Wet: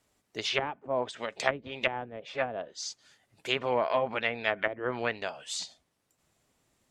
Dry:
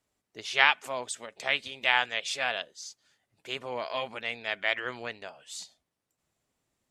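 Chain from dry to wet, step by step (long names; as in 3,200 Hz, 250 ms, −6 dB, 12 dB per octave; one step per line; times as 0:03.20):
treble cut that deepens with the level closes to 360 Hz, closed at −25.5 dBFS
level +7.5 dB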